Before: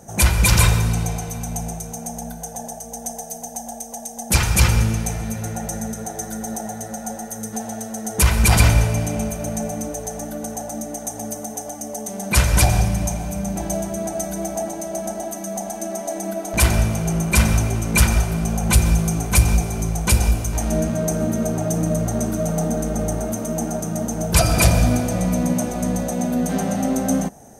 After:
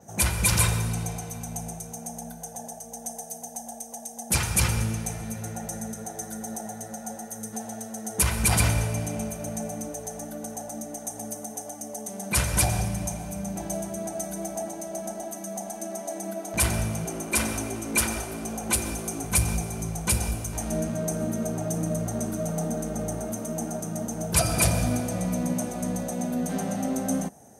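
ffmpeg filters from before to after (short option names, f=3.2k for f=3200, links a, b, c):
-filter_complex "[0:a]asettb=1/sr,asplit=3[a][b][c];[a]atrim=end=17.054[d];[b]atrim=start=17.05:end=19.24,asetpts=PTS-STARTPTS,afade=t=in:d=0.004:c=qsin,afade=t=out:st=2.186:d=0.004:c=qsin,lowshelf=f=210:t=q:w=3:g=-7[e];[c]atrim=start=19.236[f];[d][e]acrossfade=d=0.004:c1=hsin:c2=qsin[g];[g][f]acrossfade=d=0.004:c1=qsin:c2=hsin,adynamicequalizer=threshold=0.0112:dfrequency=9800:dqfactor=2.1:tfrequency=9800:tqfactor=2.1:attack=5:release=100:ratio=0.375:range=3.5:mode=boostabove:tftype=bell,highpass=74,volume=-7dB"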